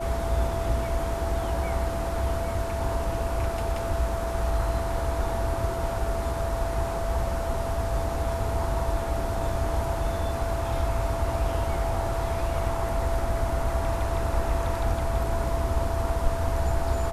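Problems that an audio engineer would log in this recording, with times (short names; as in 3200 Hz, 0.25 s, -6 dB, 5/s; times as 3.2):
tone 670 Hz -31 dBFS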